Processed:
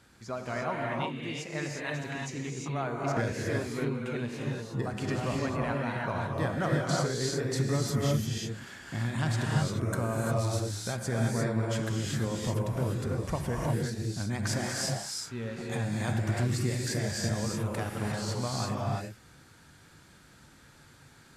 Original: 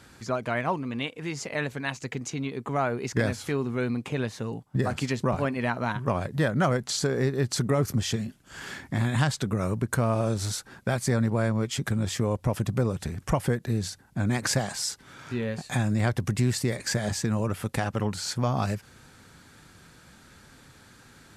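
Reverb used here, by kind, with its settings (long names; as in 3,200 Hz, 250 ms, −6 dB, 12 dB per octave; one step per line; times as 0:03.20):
reverb whose tail is shaped and stops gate 380 ms rising, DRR −2.5 dB
level −8 dB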